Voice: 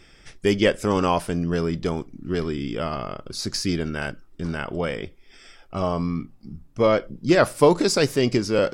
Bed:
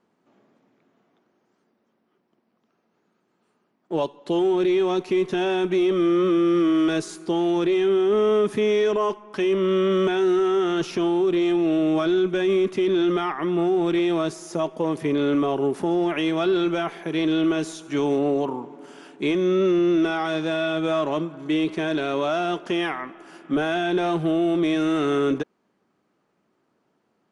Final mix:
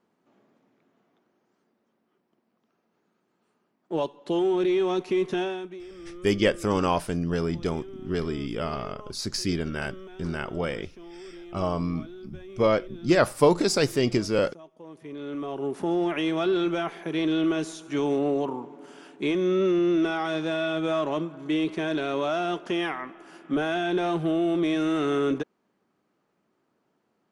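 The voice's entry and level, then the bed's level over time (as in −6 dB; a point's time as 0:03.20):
5.80 s, −3.0 dB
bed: 0:05.39 −3 dB
0:05.85 −23 dB
0:14.72 −23 dB
0:15.89 −3 dB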